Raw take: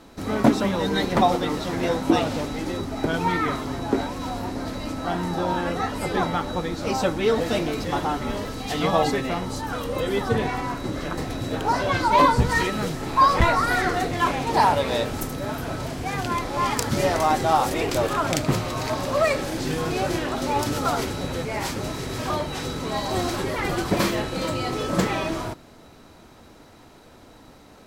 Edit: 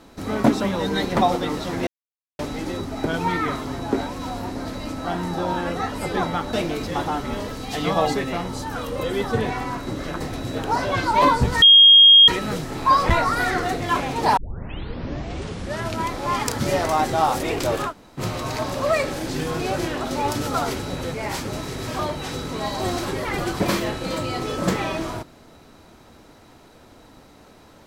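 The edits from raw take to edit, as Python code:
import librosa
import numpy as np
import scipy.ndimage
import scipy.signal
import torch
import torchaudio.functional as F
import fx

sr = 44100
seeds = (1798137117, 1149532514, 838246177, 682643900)

y = fx.edit(x, sr, fx.silence(start_s=1.87, length_s=0.52),
    fx.cut(start_s=6.53, length_s=0.97),
    fx.insert_tone(at_s=12.59, length_s=0.66, hz=3250.0, db=-6.5),
    fx.tape_start(start_s=14.68, length_s=1.74),
    fx.room_tone_fill(start_s=18.2, length_s=0.32, crossfade_s=0.1), tone=tone)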